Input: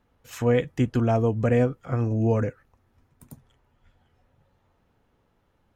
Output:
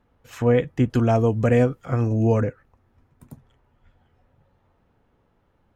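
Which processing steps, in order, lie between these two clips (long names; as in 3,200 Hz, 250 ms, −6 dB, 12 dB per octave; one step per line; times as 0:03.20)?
high-shelf EQ 3,600 Hz −9 dB, from 0:00.90 +3.5 dB, from 0:02.41 −9.5 dB
level +3 dB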